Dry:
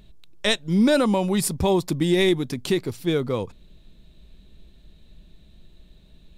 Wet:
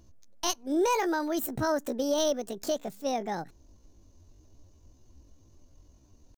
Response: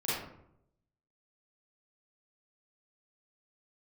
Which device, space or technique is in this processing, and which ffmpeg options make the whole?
chipmunk voice: -af "asetrate=72056,aresample=44100,atempo=0.612027,volume=-7.5dB"

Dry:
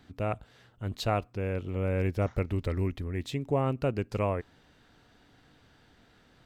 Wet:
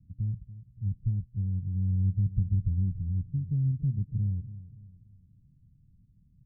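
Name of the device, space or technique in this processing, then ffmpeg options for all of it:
the neighbour's flat through the wall: -af "lowpass=f=150:w=0.5412,lowpass=f=150:w=1.3066,equalizer=f=180:t=o:w=0.69:g=5,aecho=1:1:285|570|855|1140:0.178|0.0747|0.0314|0.0132,volume=4.5dB"

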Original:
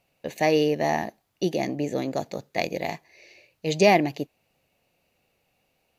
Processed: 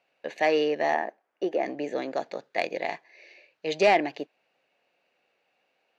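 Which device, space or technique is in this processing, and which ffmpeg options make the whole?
intercom: -filter_complex "[0:a]asettb=1/sr,asplit=3[a][b][c];[a]atrim=end=0.944[d];[b]atrim=start=0.94:end=1.66,asetpts=PTS-STARTPTS,afade=t=in:d=0.004:c=qsin,afade=t=out:st=0.716:d=0.004:c=qsin,equalizer=f=125:t=o:w=1:g=-11,equalizer=f=500:t=o:w=1:g=4,equalizer=f=4k:t=o:w=1:g=-12,equalizer=f=8k:t=o:w=1:g=-6[e];[c]atrim=start=1.656[f];[d][e]acrossfade=d=0.004:c1=hsin:c2=qsin[g];[g][f]acrossfade=d=0.004:c1=qsin:c2=hsin,highpass=380,lowpass=3.9k,equalizer=f=1.6k:t=o:w=0.39:g=6,asoftclip=type=tanh:threshold=-10.5dB"

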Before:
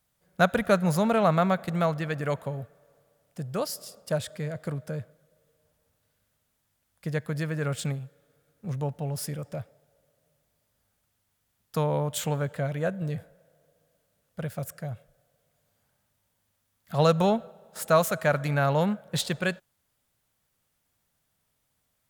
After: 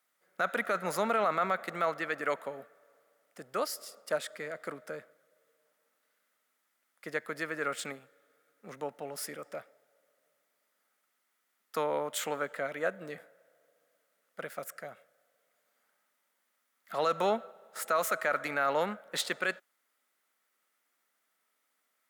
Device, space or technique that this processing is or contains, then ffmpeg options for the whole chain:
laptop speaker: -af "highpass=f=270:w=0.5412,highpass=f=270:w=1.3066,equalizer=f=1.3k:t=o:w=0.33:g=9,equalizer=f=2k:t=o:w=0.46:g=8,alimiter=limit=-15.5dB:level=0:latency=1:release=16,volume=-3.5dB"

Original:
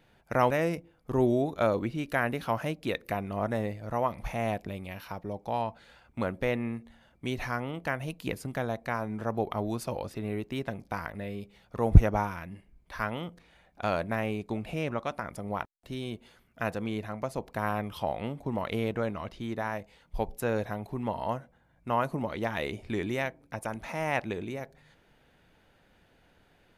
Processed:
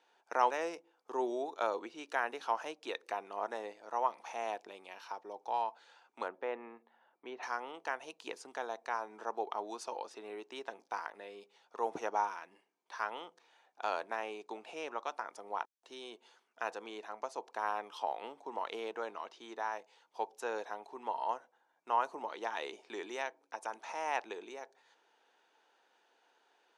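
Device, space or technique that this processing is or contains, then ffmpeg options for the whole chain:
phone speaker on a table: -filter_complex "[0:a]highpass=f=400:w=0.5412,highpass=f=400:w=1.3066,equalizer=f=580:t=q:w=4:g=-7,equalizer=f=900:t=q:w=4:g=6,equalizer=f=2.1k:t=q:w=4:g=-6,equalizer=f=6k:t=q:w=4:g=5,lowpass=f=8.5k:w=0.5412,lowpass=f=8.5k:w=1.3066,asettb=1/sr,asplit=3[a][b][c];[a]atrim=end=6.284[d];[b]atrim=start=6.28:end=7.43,asetpts=PTS-STARTPTS,afade=t=in:d=0.004:c=qsin,afade=t=out:st=1.146:d=0.004:c=qsin,lowpass=1.9k[e];[c]atrim=start=7.426[f];[d][e]acrossfade=d=0.004:c1=hsin:c2=qsin[g];[g][f]acrossfade=d=0.004:c1=qsin:c2=hsin,volume=-4.5dB"

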